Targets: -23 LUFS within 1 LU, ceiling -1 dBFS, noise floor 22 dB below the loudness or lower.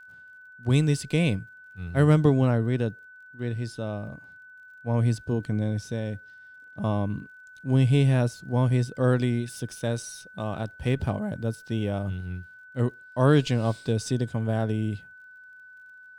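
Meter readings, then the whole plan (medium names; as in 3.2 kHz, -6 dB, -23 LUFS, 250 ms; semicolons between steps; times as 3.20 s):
tick rate 23 per s; steady tone 1.5 kHz; tone level -46 dBFS; loudness -26.0 LUFS; peak level -8.5 dBFS; loudness target -23.0 LUFS
-> de-click; band-stop 1.5 kHz, Q 30; trim +3 dB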